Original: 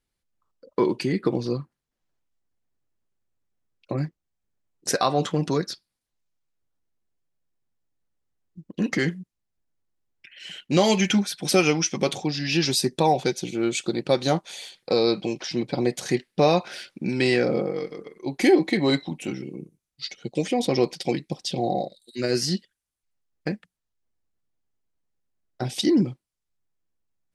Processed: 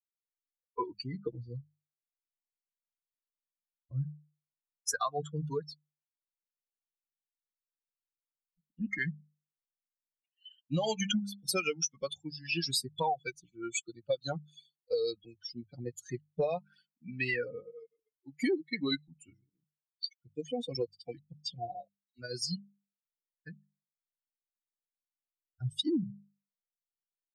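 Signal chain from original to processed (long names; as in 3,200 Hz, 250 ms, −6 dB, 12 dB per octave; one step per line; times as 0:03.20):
spectral dynamics exaggerated over time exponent 3
mains-hum notches 50/100/150/200 Hz
downward compressor 6 to 1, threshold −30 dBFS, peak gain reduction 14 dB
level +2 dB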